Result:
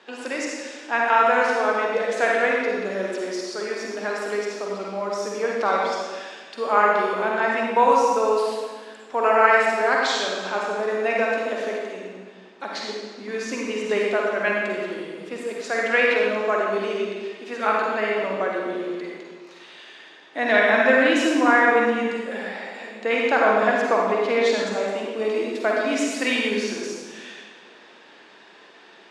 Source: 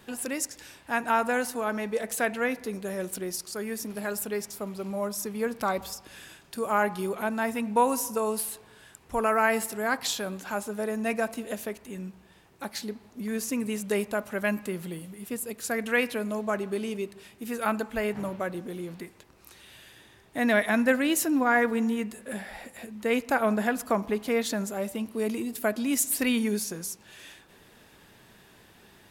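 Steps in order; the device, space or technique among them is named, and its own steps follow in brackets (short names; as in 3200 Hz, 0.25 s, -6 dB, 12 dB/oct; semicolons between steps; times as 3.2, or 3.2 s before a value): supermarket ceiling speaker (BPF 250–5300 Hz; reverb RT60 1.5 s, pre-delay 42 ms, DRR -2.5 dB); three-band isolator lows -15 dB, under 270 Hz, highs -20 dB, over 7500 Hz; gain +4.5 dB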